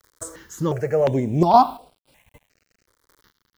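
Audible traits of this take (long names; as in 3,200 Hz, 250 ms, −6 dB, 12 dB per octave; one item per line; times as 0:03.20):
a quantiser's noise floor 10 bits, dither none
chopped level 0.65 Hz, depth 60%, duty 15%
notches that jump at a steady rate 2.8 Hz 720–6,400 Hz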